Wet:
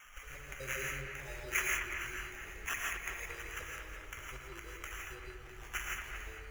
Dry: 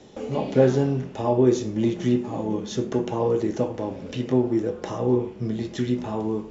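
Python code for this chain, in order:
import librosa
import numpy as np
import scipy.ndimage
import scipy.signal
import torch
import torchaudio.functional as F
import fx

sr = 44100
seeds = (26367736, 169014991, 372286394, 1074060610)

y = fx.spec_dropout(x, sr, seeds[0], share_pct=28)
y = scipy.signal.sosfilt(scipy.signal.cheby2(4, 40, [100.0, 4000.0], 'bandstop', fs=sr, output='sos'), y)
y = fx.high_shelf(y, sr, hz=4900.0, db=8.0)
y = fx.sample_hold(y, sr, seeds[1], rate_hz=4400.0, jitter_pct=0)
y = fx.echo_wet_lowpass(y, sr, ms=231, feedback_pct=50, hz=3200.0, wet_db=-6.0)
y = fx.rev_gated(y, sr, seeds[2], gate_ms=190, shape='rising', drr_db=-1.0)
y = y * 10.0 ** (10.5 / 20.0)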